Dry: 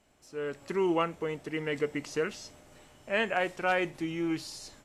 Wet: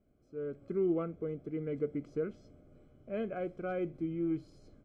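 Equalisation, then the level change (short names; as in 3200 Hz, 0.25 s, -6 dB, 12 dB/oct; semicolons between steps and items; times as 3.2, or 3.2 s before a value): running mean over 48 samples; 0.0 dB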